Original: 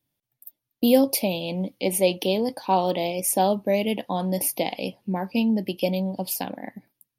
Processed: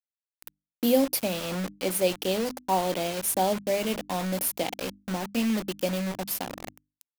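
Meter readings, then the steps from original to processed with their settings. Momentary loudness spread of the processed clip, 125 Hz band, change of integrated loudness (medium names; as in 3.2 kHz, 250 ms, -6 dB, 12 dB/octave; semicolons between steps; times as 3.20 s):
8 LU, -4.5 dB, -3.5 dB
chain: peaking EQ 14 kHz +3 dB 0.27 oct; bit crusher 5-bit; hum notches 50/100/150/200/250/300 Hz; trim -4 dB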